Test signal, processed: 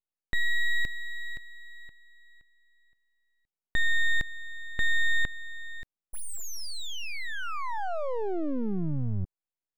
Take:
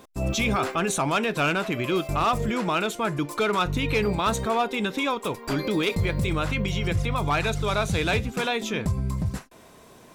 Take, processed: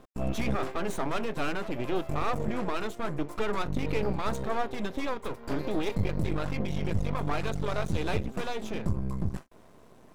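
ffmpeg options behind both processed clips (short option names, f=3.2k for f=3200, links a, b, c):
-af "aeval=exprs='max(val(0),0)':c=same,tiltshelf=f=1.4k:g=5.5,volume=-4.5dB"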